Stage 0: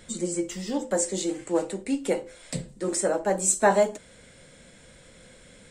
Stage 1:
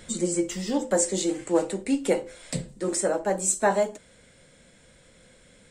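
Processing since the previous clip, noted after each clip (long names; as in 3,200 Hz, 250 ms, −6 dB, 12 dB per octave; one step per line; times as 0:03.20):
speech leveller within 4 dB 2 s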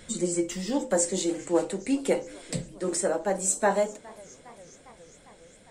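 feedback echo with a swinging delay time 408 ms, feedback 73%, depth 167 cents, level −23.5 dB
level −1.5 dB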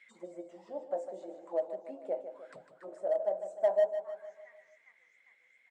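envelope filter 640–2,300 Hz, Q 12, down, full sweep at −26 dBFS
in parallel at −7 dB: hard clipping −28 dBFS, distortion −10 dB
on the sum: repeating echo 152 ms, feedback 51%, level −10 dB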